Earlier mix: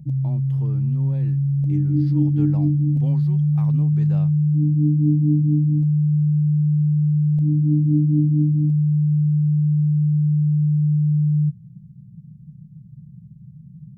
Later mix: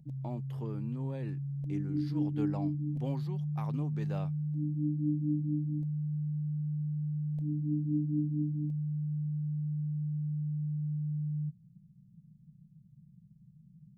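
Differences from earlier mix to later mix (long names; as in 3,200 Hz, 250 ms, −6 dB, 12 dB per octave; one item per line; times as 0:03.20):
background −7.5 dB
master: add parametric band 94 Hz −12.5 dB 2 octaves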